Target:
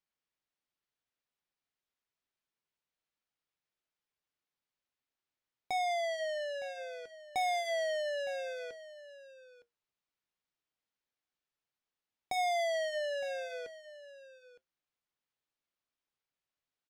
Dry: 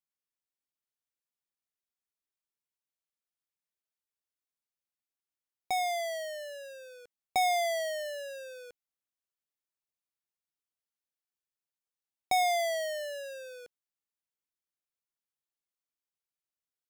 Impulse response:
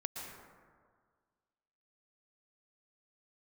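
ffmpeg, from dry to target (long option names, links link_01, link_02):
-filter_complex "[0:a]lowpass=4400,asplit=2[link_01][link_02];[link_02]acompressor=threshold=-40dB:ratio=6,volume=2dB[link_03];[link_01][link_03]amix=inputs=2:normalize=0,asoftclip=type=tanh:threshold=-27.5dB,flanger=delay=6.4:depth=1:regen=-75:speed=0.28:shape=sinusoidal,aecho=1:1:912:0.158,volume=2dB"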